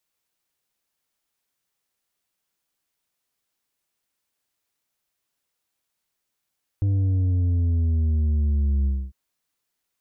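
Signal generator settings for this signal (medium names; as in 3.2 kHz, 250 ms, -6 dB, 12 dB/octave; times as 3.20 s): sub drop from 100 Hz, over 2.30 s, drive 6 dB, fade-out 0.26 s, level -19 dB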